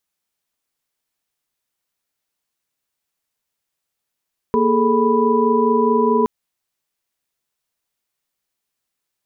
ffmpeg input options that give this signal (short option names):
-f lavfi -i "aevalsrc='0.119*(sin(2*PI*233.08*t)+sin(2*PI*415.3*t)+sin(2*PI*440*t)+sin(2*PI*987.77*t))':d=1.72:s=44100"